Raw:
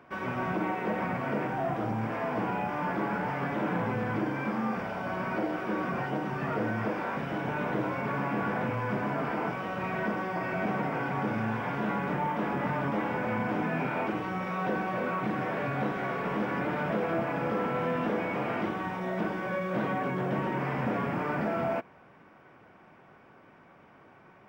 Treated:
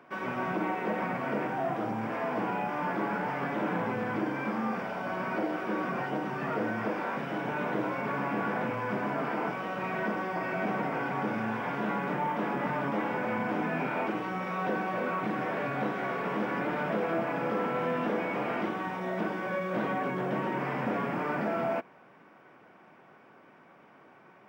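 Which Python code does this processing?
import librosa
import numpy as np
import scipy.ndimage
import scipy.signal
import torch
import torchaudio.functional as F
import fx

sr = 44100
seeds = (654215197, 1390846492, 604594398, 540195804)

y = scipy.signal.sosfilt(scipy.signal.butter(2, 170.0, 'highpass', fs=sr, output='sos'), x)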